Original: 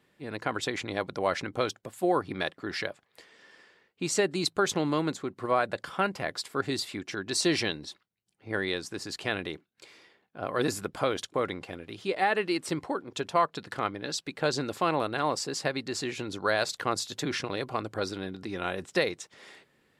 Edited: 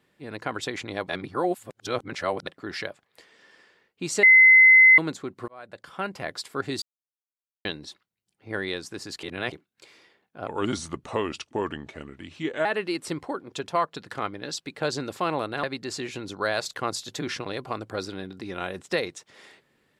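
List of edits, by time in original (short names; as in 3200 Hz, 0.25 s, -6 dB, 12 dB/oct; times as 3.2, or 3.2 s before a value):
1.09–2.47 reverse
4.23–4.98 bleep 2050 Hz -10 dBFS
5.48–6.29 fade in
6.82–7.65 mute
9.23–9.52 reverse
10.47–12.26 speed 82%
15.24–15.67 cut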